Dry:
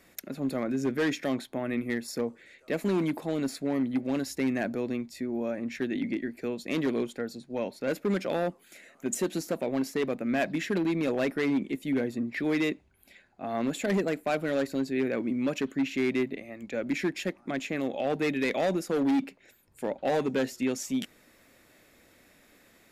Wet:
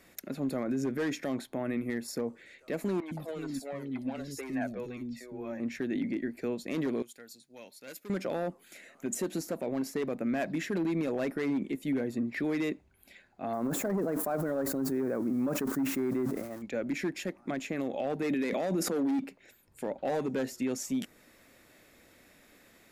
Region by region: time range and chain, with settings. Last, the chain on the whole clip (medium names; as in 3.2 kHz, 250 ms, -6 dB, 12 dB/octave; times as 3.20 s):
3.00–5.60 s: three bands offset in time mids, highs, lows 60/110 ms, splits 360/4400 Hz + Shepard-style flanger falling 2 Hz
7.02–8.10 s: pre-emphasis filter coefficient 0.9 + tape noise reduction on one side only decoder only
13.53–16.62 s: zero-crossing glitches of -31 dBFS + resonant high shelf 1.8 kHz -12.5 dB, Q 1.5 + decay stretcher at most 65 dB/s
18.23–19.19 s: resonant low shelf 130 Hz -12.5 dB, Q 1.5 + level flattener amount 100%
whole clip: dynamic bell 3.2 kHz, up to -5 dB, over -49 dBFS, Q 0.92; peak limiter -23.5 dBFS